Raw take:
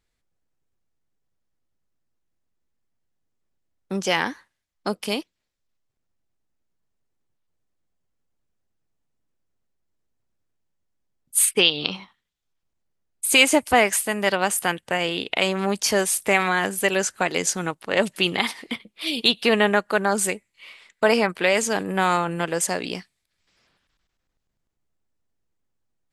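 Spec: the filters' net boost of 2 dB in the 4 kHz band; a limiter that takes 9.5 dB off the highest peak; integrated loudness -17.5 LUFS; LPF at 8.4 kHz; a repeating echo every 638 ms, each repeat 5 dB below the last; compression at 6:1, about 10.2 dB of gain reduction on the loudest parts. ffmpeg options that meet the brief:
-af "lowpass=8400,equalizer=f=4000:t=o:g=3,acompressor=threshold=0.0891:ratio=6,alimiter=limit=0.2:level=0:latency=1,aecho=1:1:638|1276|1914|2552|3190|3828|4466:0.562|0.315|0.176|0.0988|0.0553|0.031|0.0173,volume=2.99"

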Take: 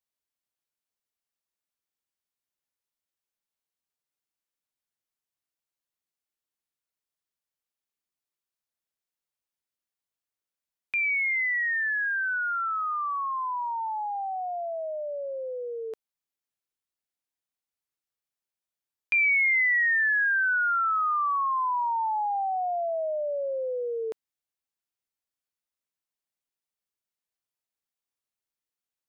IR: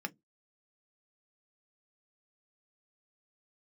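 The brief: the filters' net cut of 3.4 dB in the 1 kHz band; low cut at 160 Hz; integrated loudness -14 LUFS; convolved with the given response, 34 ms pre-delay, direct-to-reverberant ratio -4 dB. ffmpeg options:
-filter_complex "[0:a]highpass=160,equalizer=f=1000:t=o:g=-4.5,asplit=2[s0][s1];[1:a]atrim=start_sample=2205,adelay=34[s2];[s1][s2]afir=irnorm=-1:irlink=0,volume=1.33[s3];[s0][s3]amix=inputs=2:normalize=0,volume=2.37"

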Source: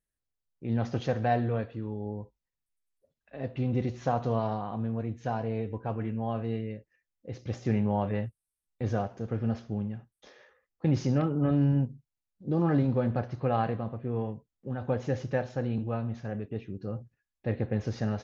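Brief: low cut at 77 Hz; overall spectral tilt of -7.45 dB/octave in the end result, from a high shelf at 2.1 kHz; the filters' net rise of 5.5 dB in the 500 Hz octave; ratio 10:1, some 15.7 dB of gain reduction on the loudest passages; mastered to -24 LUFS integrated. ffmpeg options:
-af "highpass=77,equalizer=f=500:t=o:g=6.5,highshelf=f=2100:g=-3,acompressor=threshold=0.0178:ratio=10,volume=7.08"

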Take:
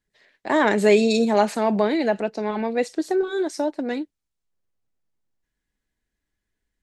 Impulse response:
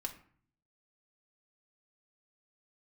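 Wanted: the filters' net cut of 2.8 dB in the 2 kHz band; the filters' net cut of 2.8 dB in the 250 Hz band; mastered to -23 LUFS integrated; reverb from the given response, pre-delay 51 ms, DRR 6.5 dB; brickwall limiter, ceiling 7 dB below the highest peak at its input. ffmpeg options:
-filter_complex "[0:a]equalizer=f=250:t=o:g=-3.5,equalizer=f=2000:t=o:g=-3.5,alimiter=limit=0.211:level=0:latency=1,asplit=2[s0][s1];[1:a]atrim=start_sample=2205,adelay=51[s2];[s1][s2]afir=irnorm=-1:irlink=0,volume=0.531[s3];[s0][s3]amix=inputs=2:normalize=0,volume=1.19"

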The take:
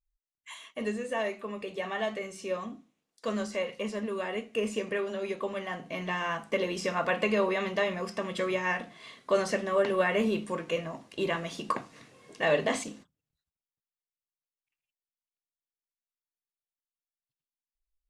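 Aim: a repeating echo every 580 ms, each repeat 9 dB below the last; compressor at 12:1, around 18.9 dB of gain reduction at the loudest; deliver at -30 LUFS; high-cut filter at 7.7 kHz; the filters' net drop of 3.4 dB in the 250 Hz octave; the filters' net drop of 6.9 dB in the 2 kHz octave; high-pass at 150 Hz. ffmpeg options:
-af "highpass=150,lowpass=7700,equalizer=f=250:t=o:g=-3.5,equalizer=f=2000:t=o:g=-8.5,acompressor=threshold=0.00891:ratio=12,aecho=1:1:580|1160|1740|2320:0.355|0.124|0.0435|0.0152,volume=5.96"

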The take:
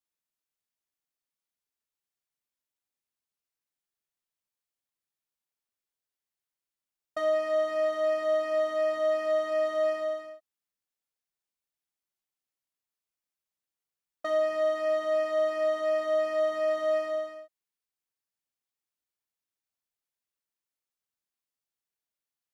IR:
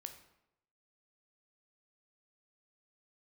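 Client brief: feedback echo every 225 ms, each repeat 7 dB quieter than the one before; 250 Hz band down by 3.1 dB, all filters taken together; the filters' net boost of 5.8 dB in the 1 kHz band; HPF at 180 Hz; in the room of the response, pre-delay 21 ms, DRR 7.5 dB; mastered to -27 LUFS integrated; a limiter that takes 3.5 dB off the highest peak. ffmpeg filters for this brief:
-filter_complex "[0:a]highpass=180,equalizer=f=250:t=o:g=-4.5,equalizer=f=1000:t=o:g=8.5,alimiter=limit=0.106:level=0:latency=1,aecho=1:1:225|450|675|900|1125:0.447|0.201|0.0905|0.0407|0.0183,asplit=2[s0][s1];[1:a]atrim=start_sample=2205,adelay=21[s2];[s1][s2]afir=irnorm=-1:irlink=0,volume=0.708[s3];[s0][s3]amix=inputs=2:normalize=0,volume=0.501"

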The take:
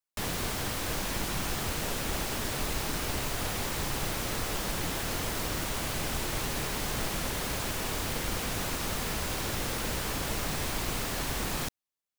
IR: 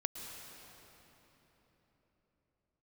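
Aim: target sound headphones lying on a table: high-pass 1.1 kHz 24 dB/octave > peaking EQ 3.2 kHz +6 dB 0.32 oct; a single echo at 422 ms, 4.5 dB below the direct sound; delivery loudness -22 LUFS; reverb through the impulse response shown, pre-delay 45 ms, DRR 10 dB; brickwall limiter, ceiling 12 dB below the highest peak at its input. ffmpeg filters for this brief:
-filter_complex "[0:a]alimiter=level_in=2.11:limit=0.0631:level=0:latency=1,volume=0.473,aecho=1:1:422:0.596,asplit=2[s0][s1];[1:a]atrim=start_sample=2205,adelay=45[s2];[s1][s2]afir=irnorm=-1:irlink=0,volume=0.282[s3];[s0][s3]amix=inputs=2:normalize=0,highpass=f=1100:w=0.5412,highpass=f=1100:w=1.3066,equalizer=f=3200:t=o:w=0.32:g=6,volume=6.31"

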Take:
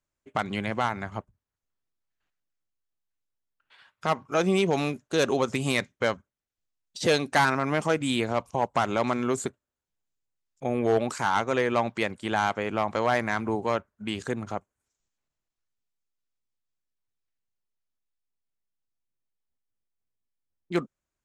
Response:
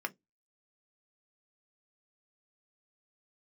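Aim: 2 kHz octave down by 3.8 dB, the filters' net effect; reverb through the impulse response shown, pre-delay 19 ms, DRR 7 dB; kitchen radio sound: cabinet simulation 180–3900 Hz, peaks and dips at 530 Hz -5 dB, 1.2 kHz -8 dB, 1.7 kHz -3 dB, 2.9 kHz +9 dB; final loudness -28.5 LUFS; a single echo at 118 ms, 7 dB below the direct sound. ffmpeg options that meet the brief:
-filter_complex "[0:a]equalizer=f=2000:t=o:g=-4,aecho=1:1:118:0.447,asplit=2[s0][s1];[1:a]atrim=start_sample=2205,adelay=19[s2];[s1][s2]afir=irnorm=-1:irlink=0,volume=0.299[s3];[s0][s3]amix=inputs=2:normalize=0,highpass=180,equalizer=f=530:t=q:w=4:g=-5,equalizer=f=1200:t=q:w=4:g=-8,equalizer=f=1700:t=q:w=4:g=-3,equalizer=f=2900:t=q:w=4:g=9,lowpass=f=3900:w=0.5412,lowpass=f=3900:w=1.3066"

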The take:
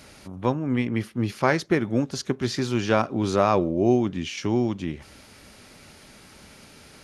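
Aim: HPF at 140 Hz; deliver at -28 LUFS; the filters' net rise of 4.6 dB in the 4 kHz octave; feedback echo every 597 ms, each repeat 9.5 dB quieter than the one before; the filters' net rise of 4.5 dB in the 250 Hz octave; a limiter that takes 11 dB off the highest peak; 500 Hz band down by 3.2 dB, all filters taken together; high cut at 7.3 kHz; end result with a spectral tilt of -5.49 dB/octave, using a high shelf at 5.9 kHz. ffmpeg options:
-af "highpass=140,lowpass=7300,equalizer=f=250:t=o:g=8.5,equalizer=f=500:t=o:g=-9,equalizer=f=4000:t=o:g=7.5,highshelf=f=5900:g=-3,alimiter=limit=0.158:level=0:latency=1,aecho=1:1:597|1194|1791|2388:0.335|0.111|0.0365|0.012,volume=0.794"

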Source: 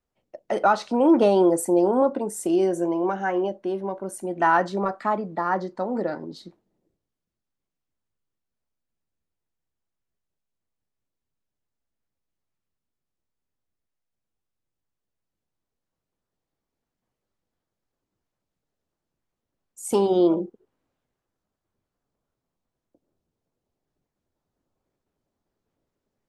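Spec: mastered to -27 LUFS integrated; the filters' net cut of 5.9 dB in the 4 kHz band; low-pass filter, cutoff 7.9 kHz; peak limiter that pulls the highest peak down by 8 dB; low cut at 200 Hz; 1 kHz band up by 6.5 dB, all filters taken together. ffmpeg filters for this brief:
-af "highpass=200,lowpass=7900,equalizer=f=1000:t=o:g=8.5,equalizer=f=4000:t=o:g=-8.5,volume=0.596,alimiter=limit=0.178:level=0:latency=1"

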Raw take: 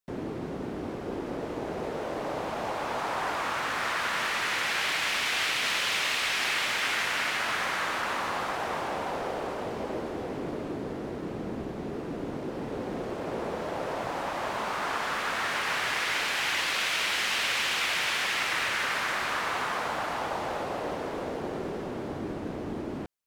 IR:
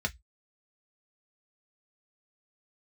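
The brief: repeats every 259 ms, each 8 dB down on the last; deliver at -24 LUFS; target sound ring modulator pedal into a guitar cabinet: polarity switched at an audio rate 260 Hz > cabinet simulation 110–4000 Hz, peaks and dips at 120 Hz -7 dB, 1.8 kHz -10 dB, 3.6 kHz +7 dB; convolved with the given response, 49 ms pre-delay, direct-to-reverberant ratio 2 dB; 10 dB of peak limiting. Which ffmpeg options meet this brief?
-filter_complex "[0:a]alimiter=level_in=1.19:limit=0.0631:level=0:latency=1,volume=0.841,aecho=1:1:259|518|777|1036|1295:0.398|0.159|0.0637|0.0255|0.0102,asplit=2[s0][s1];[1:a]atrim=start_sample=2205,adelay=49[s2];[s1][s2]afir=irnorm=-1:irlink=0,volume=0.422[s3];[s0][s3]amix=inputs=2:normalize=0,aeval=exprs='val(0)*sgn(sin(2*PI*260*n/s))':c=same,highpass=110,equalizer=f=120:t=q:w=4:g=-7,equalizer=f=1800:t=q:w=4:g=-10,equalizer=f=3600:t=q:w=4:g=7,lowpass=f=4000:w=0.5412,lowpass=f=4000:w=1.3066,volume=2.51"

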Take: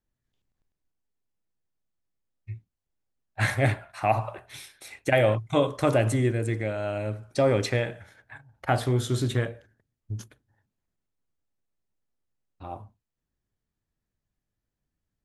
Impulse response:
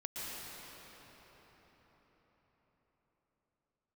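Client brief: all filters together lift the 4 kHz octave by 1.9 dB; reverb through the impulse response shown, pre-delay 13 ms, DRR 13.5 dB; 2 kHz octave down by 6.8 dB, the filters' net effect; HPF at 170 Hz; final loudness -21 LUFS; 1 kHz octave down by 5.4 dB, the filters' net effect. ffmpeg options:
-filter_complex "[0:a]highpass=170,equalizer=f=1000:t=o:g=-7,equalizer=f=2000:t=o:g=-7.5,equalizer=f=4000:t=o:g=5,asplit=2[s0][s1];[1:a]atrim=start_sample=2205,adelay=13[s2];[s1][s2]afir=irnorm=-1:irlink=0,volume=0.168[s3];[s0][s3]amix=inputs=2:normalize=0,volume=2.66"

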